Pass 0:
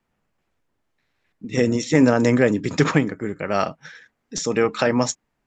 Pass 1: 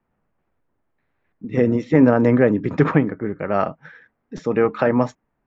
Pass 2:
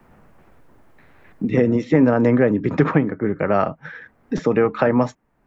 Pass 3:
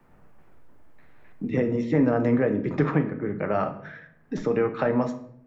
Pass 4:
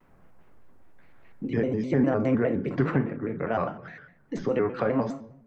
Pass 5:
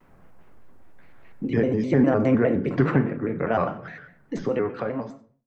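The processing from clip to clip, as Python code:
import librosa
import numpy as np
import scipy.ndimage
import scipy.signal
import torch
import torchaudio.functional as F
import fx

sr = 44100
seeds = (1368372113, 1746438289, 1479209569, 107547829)

y1 = scipy.signal.sosfilt(scipy.signal.butter(2, 1600.0, 'lowpass', fs=sr, output='sos'), x)
y1 = F.gain(torch.from_numpy(y1), 2.0).numpy()
y2 = fx.band_squash(y1, sr, depth_pct=70)
y3 = fx.room_shoebox(y2, sr, seeds[0], volume_m3=130.0, walls='mixed', distance_m=0.41)
y3 = F.gain(torch.from_numpy(y3), -7.5).numpy()
y4 = fx.vibrato_shape(y3, sr, shape='square', rate_hz=4.9, depth_cents=160.0)
y4 = F.gain(torch.from_numpy(y4), -2.0).numpy()
y5 = fx.fade_out_tail(y4, sr, length_s=1.34)
y5 = y5 + 10.0 ** (-19.5 / 20.0) * np.pad(y5, (int(96 * sr / 1000.0), 0))[:len(y5)]
y5 = F.gain(torch.from_numpy(y5), 4.0).numpy()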